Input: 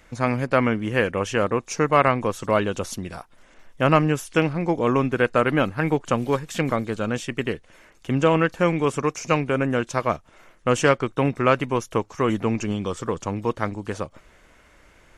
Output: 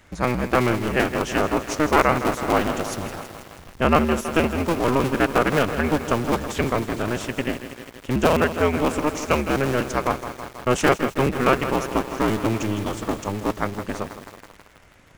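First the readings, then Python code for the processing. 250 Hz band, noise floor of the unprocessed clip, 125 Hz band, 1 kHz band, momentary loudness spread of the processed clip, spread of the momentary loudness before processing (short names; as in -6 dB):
+1.0 dB, -55 dBFS, -1.5 dB, +1.5 dB, 10 LU, 9 LU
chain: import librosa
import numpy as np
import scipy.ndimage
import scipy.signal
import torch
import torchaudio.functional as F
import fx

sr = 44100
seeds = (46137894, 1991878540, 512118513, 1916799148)

y = fx.cycle_switch(x, sr, every=2, mode='inverted')
y = fx.echo_crushed(y, sr, ms=162, feedback_pct=80, bits=6, wet_db=-10.5)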